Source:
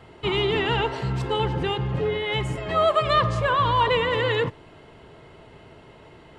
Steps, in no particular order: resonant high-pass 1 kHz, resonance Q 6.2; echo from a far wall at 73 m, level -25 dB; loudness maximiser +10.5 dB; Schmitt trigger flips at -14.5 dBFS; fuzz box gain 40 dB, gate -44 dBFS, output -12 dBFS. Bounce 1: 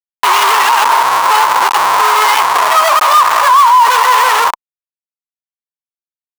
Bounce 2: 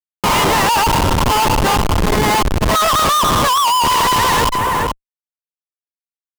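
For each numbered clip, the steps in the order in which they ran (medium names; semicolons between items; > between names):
echo from a far wall > fuzz box > Schmitt trigger > resonant high-pass > loudness maximiser; resonant high-pass > loudness maximiser > Schmitt trigger > echo from a far wall > fuzz box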